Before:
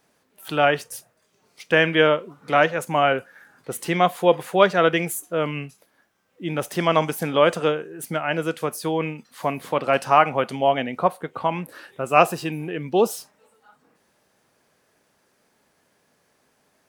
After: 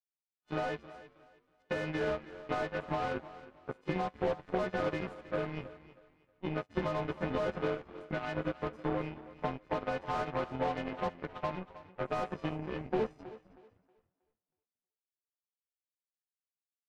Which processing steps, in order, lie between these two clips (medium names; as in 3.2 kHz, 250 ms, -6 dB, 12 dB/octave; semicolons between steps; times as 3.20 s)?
partials quantised in pitch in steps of 3 st; treble shelf 2.1 kHz -8 dB; waveshaping leveller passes 2; overload inside the chain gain 10 dB; compression, threshold -16 dBFS, peak gain reduction 5 dB; tape spacing loss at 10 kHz 42 dB; frequency-shifting echo 259 ms, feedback 60%, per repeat -88 Hz, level -12.5 dB; power-law waveshaper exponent 2; on a send: thinning echo 318 ms, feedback 29%, high-pass 190 Hz, level -16 dB; on the sum: trim -6 dB